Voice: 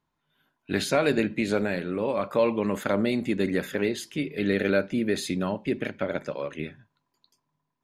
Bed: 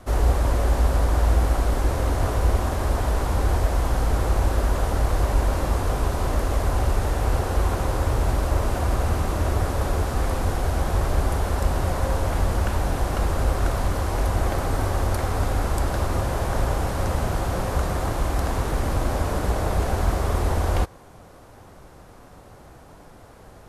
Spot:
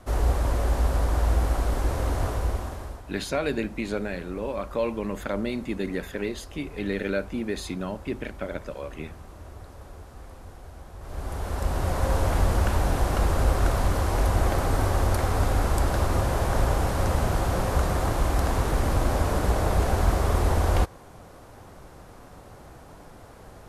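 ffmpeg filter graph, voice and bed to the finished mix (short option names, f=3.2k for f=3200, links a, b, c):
-filter_complex "[0:a]adelay=2400,volume=-4dB[a];[1:a]volume=17dB,afade=t=out:st=2.19:d=0.84:silence=0.141254,afade=t=in:st=10.99:d=1.21:silence=0.0944061[b];[a][b]amix=inputs=2:normalize=0"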